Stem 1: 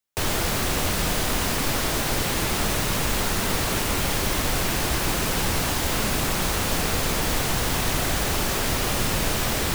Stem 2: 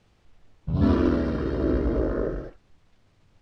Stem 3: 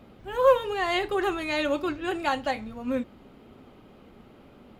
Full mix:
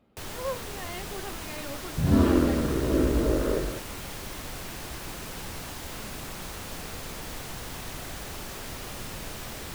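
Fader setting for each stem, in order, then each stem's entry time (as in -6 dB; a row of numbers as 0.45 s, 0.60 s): -14.0 dB, 0.0 dB, -14.0 dB; 0.00 s, 1.30 s, 0.00 s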